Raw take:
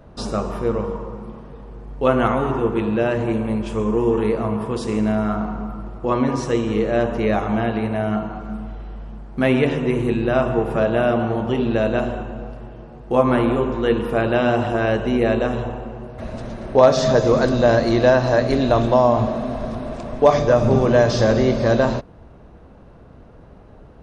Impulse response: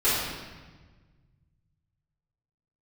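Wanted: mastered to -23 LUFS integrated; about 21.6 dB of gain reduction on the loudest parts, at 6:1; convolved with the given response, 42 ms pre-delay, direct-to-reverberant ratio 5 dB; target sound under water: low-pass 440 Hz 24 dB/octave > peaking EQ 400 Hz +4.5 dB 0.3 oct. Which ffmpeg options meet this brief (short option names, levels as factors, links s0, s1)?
-filter_complex "[0:a]acompressor=threshold=0.0251:ratio=6,asplit=2[s0][s1];[1:a]atrim=start_sample=2205,adelay=42[s2];[s1][s2]afir=irnorm=-1:irlink=0,volume=0.1[s3];[s0][s3]amix=inputs=2:normalize=0,lowpass=f=440:w=0.5412,lowpass=f=440:w=1.3066,equalizer=f=400:t=o:w=0.3:g=4.5,volume=3.76"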